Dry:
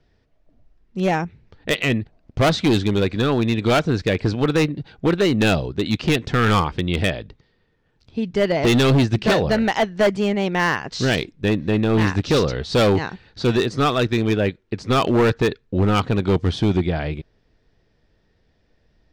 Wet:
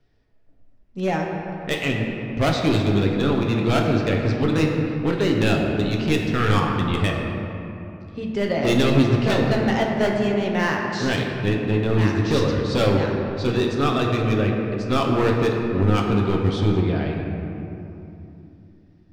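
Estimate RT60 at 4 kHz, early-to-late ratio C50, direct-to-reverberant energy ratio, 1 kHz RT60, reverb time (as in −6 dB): 1.6 s, 2.0 dB, −0.5 dB, 2.9 s, 2.9 s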